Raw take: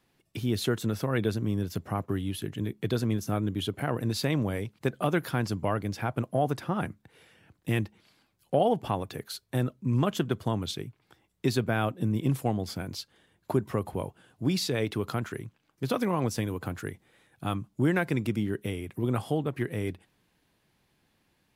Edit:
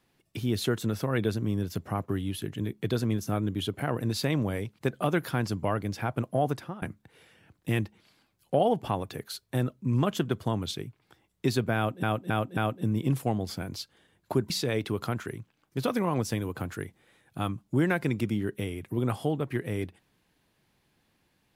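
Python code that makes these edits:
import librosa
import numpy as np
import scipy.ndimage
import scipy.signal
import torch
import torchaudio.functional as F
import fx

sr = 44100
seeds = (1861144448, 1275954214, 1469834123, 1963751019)

y = fx.edit(x, sr, fx.fade_out_to(start_s=6.51, length_s=0.31, floor_db=-22.0),
    fx.repeat(start_s=11.76, length_s=0.27, count=4),
    fx.cut(start_s=13.69, length_s=0.87), tone=tone)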